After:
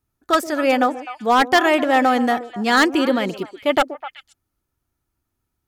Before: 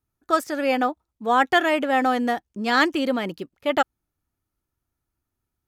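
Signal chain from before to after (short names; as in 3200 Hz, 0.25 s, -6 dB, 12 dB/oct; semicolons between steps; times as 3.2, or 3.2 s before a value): wavefolder -12 dBFS; delay with a stepping band-pass 0.127 s, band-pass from 390 Hz, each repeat 1.4 oct, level -8.5 dB; gain +4.5 dB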